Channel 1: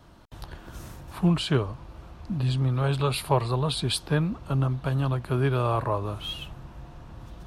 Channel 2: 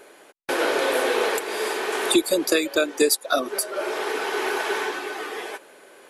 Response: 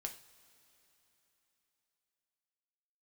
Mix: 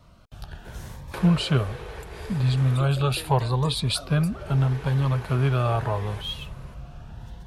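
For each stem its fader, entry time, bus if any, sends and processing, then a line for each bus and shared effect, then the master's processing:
+1.0 dB, 0.00 s, no send, bell 320 Hz -11 dB 0.55 oct; AGC gain up to 3 dB; cascading phaser rising 0.76 Hz
+3.0 dB, 0.65 s, no send, compressor 6:1, threshold -32 dBFS, peak gain reduction 17 dB; auto duck -9 dB, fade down 1.75 s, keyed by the first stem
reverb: off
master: high shelf 5900 Hz -4.5 dB

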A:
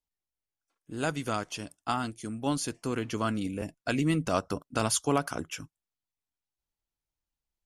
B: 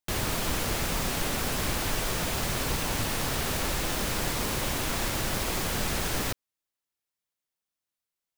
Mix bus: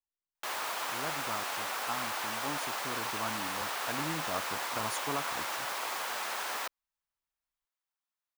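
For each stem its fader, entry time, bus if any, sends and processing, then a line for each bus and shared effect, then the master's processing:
-12.5 dB, 0.00 s, no send, dry
-4.5 dB, 0.35 s, no send, HPF 730 Hz 12 dB/oct; bell 11000 Hz -4 dB 2.1 oct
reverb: off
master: bell 990 Hz +6.5 dB 1.4 oct

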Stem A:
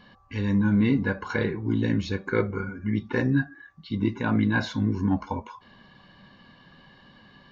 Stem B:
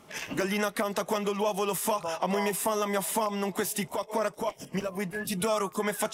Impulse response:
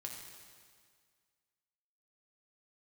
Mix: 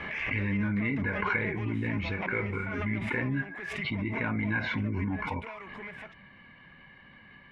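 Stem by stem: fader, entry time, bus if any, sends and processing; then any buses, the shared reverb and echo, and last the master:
-5.5 dB, 0.00 s, no send, limiter -19 dBFS, peak gain reduction 8.5 dB
-3.5 dB, 0.00 s, no send, soft clip -29 dBFS, distortion -10 dB; auto duck -11 dB, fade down 0.25 s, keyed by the first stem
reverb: off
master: synth low-pass 2200 Hz, resonance Q 6.3; bell 61 Hz +4.5 dB 2.3 oct; backwards sustainer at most 28 dB/s

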